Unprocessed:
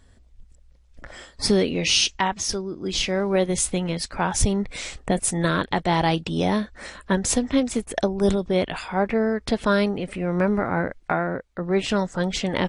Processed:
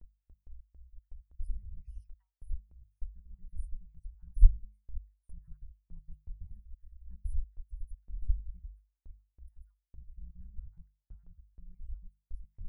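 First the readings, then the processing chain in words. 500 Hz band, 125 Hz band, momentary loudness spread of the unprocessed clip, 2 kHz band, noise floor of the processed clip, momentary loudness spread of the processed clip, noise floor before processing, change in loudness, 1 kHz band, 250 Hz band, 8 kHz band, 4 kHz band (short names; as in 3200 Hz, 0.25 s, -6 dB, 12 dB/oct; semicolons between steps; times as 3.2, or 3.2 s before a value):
under -40 dB, -13.0 dB, 7 LU, under -40 dB, -85 dBFS, 19 LU, -54 dBFS, -16.5 dB, under -40 dB, under -40 dB, under -40 dB, under -40 dB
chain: random spectral dropouts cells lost 49%; inverse Chebyshev band-stop 260–7600 Hz, stop band 70 dB; gate with hold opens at -58 dBFS; notches 50/100/150/200 Hz; gain +7.5 dB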